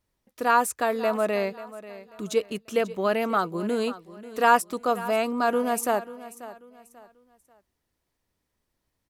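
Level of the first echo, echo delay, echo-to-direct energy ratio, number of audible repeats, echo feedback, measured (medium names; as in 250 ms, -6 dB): -16.0 dB, 539 ms, -15.5 dB, 2, 32%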